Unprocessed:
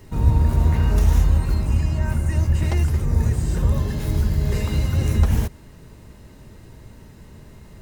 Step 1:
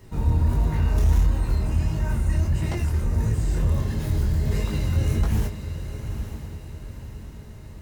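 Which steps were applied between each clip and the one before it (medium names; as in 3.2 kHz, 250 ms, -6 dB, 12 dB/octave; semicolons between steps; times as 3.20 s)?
chorus 1.5 Hz, delay 18.5 ms, depth 7.4 ms; echo that smears into a reverb 916 ms, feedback 45%, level -10 dB; saturation -9.5 dBFS, distortion -23 dB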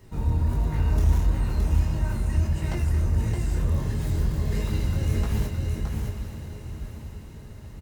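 delay 618 ms -4.5 dB; trim -3 dB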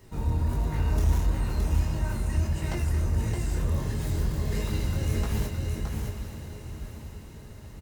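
tone controls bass -3 dB, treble +2 dB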